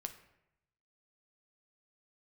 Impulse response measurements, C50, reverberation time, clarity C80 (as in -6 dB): 11.5 dB, 0.85 s, 14.5 dB